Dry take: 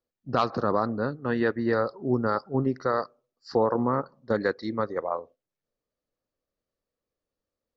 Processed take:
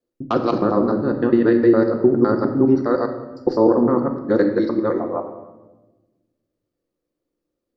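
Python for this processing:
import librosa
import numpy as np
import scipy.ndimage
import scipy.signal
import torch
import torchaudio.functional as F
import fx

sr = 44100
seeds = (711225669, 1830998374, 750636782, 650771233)

y = fx.local_reverse(x, sr, ms=102.0)
y = fx.peak_eq(y, sr, hz=310.0, db=13.5, octaves=1.2)
y = fx.room_shoebox(y, sr, seeds[0], volume_m3=630.0, walls='mixed', distance_m=0.85)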